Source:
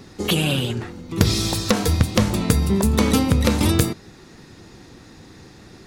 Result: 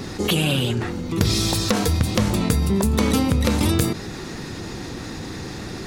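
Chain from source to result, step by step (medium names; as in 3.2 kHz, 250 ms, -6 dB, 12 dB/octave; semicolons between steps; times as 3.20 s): level flattener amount 50%; trim -4 dB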